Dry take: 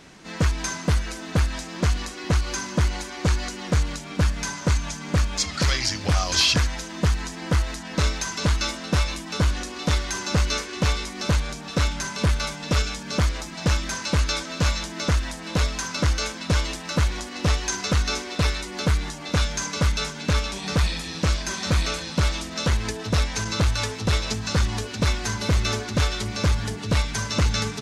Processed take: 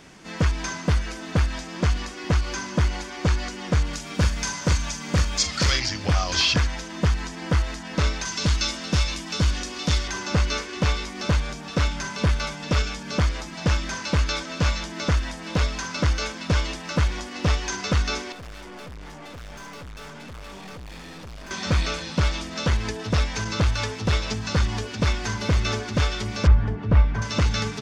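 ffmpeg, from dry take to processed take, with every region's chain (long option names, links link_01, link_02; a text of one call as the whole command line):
ffmpeg -i in.wav -filter_complex "[0:a]asettb=1/sr,asplit=3[link_01][link_02][link_03];[link_01]atrim=end=3.934[link_04];[link_02]atrim=start=3.93:end=5.8,asetpts=PTS-STARTPTS,afade=type=in:duration=0.004:curve=qsin,afade=type=out:start_time=1.866:duration=0.004:curve=qsin,aemphasis=mode=production:type=50fm,asplit=2[link_05][link_06];[link_06]adelay=43,volume=-10.5dB[link_07];[link_05][link_07]amix=inputs=2:normalize=0,atrim=end_sample=82467[link_08];[link_03]atrim=start=5.796[link_09];[link_04][link_08]acrossfade=duration=0.004:curve1=hsin:curve2=qsin[link_10];[link_10][link_09]acrossfade=duration=0.004:curve1=qsin:curve2=hsin,asettb=1/sr,asplit=3[link_11][link_12][link_13];[link_11]atrim=end=8.254[link_14];[link_12]atrim=start=8.25:end=10.08,asetpts=PTS-STARTPTS,afade=type=in:duration=0.004:curve=qsin,afade=type=out:start_time=1.826:duration=0.004:curve=qsin,highshelf=frequency=3100:gain=8,acrossover=split=330|3000[link_15][link_16][link_17];[link_16]acompressor=threshold=-37dB:ratio=1.5:attack=3.2:release=140:knee=2.83:detection=peak[link_18];[link_15][link_18][link_17]amix=inputs=3:normalize=0[link_19];[link_13]atrim=start=10.076[link_20];[link_14][link_19]acrossfade=duration=0.004:curve1=hsin:curve2=qsin[link_21];[link_21][link_20]acrossfade=duration=0.004:curve1=qsin:curve2=hsin,asettb=1/sr,asplit=3[link_22][link_23][link_24];[link_22]atrim=end=18.324[link_25];[link_23]atrim=start=18.32:end=21.51,asetpts=PTS-STARTPTS,afade=type=in:duration=0.004:curve=qsin,afade=type=out:start_time=3.186:duration=0.004:curve=qsin,lowpass=frequency=2600:poles=1,equalizer=frequency=770:width=0.51:gain=4.5,aeval=exprs='(tanh(79.4*val(0)+0.35)-tanh(0.35))/79.4':channel_layout=same[link_26];[link_24]atrim=start=21.506[link_27];[link_25][link_26]acrossfade=duration=0.004:curve1=hsin:curve2=qsin[link_28];[link_28][link_27]acrossfade=duration=0.004:curve1=qsin:curve2=hsin,asettb=1/sr,asplit=3[link_29][link_30][link_31];[link_29]atrim=end=26.474[link_32];[link_30]atrim=start=26.47:end=27.22,asetpts=PTS-STARTPTS,afade=type=in:duration=0.004:curve=qsin,afade=type=out:start_time=0.746:duration=0.004:curve=qsin,lowpass=1600,lowshelf=frequency=75:gain=12[link_33];[link_31]atrim=start=27.216[link_34];[link_32][link_33]acrossfade=duration=0.004:curve1=hsin:curve2=qsin[link_35];[link_35][link_34]acrossfade=duration=0.004:curve1=qsin:curve2=hsin,bandreject=frequency=4000:width=18,acrossover=split=6400[link_36][link_37];[link_37]acompressor=threshold=-52dB:ratio=4:attack=1:release=60[link_38];[link_36][link_38]amix=inputs=2:normalize=0" out.wav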